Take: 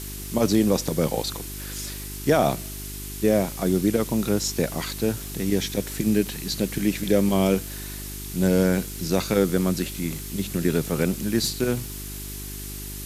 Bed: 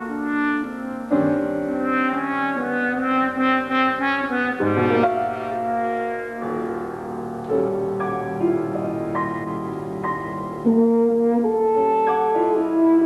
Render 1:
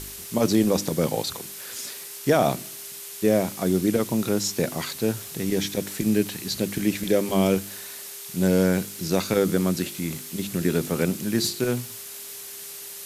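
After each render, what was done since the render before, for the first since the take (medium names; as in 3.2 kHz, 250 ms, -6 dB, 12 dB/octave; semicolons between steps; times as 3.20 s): de-hum 50 Hz, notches 7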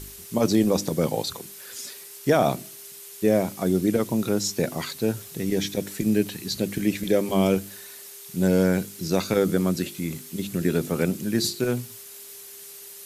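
noise reduction 6 dB, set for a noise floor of -39 dBFS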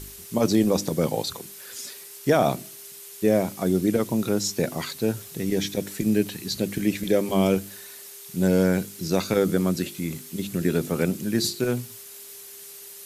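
no audible change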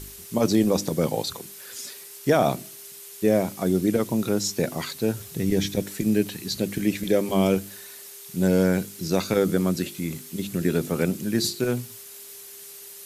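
5.20–5.82 s: bass shelf 120 Hz +11 dB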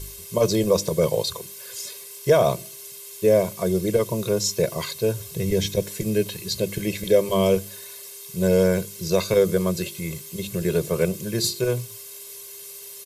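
peaking EQ 1.6 kHz -6 dB 0.39 oct; comb 1.9 ms, depth 93%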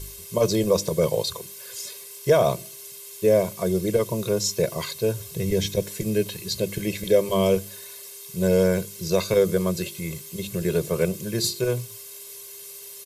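trim -1 dB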